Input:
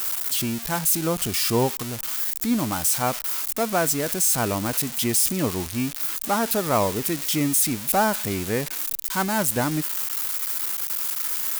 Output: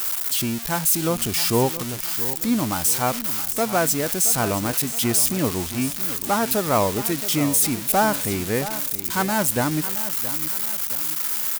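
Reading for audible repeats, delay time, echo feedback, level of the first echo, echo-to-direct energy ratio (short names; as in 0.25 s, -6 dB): 3, 0.671 s, 42%, -13.5 dB, -12.5 dB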